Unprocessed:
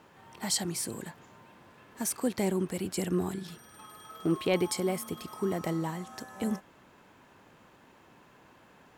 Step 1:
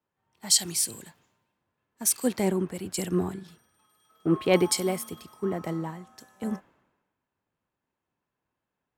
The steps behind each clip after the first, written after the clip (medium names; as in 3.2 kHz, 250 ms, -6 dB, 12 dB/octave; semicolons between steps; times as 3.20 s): three bands expanded up and down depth 100%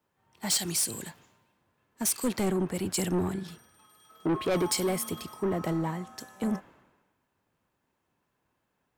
in parallel at +2 dB: compression, threshold -33 dBFS, peak gain reduction 17 dB; on the sum: saturation -22.5 dBFS, distortion -8 dB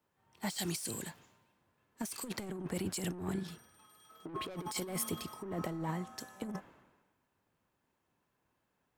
compressor with a negative ratio -31 dBFS, ratio -0.5; trim -6 dB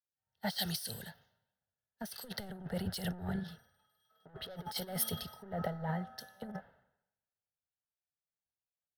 static phaser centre 1.6 kHz, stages 8; three bands expanded up and down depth 70%; trim +3 dB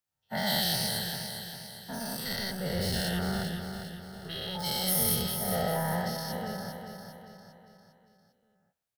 every event in the spectrogram widened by 240 ms; feedback delay 401 ms, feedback 47%, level -7.5 dB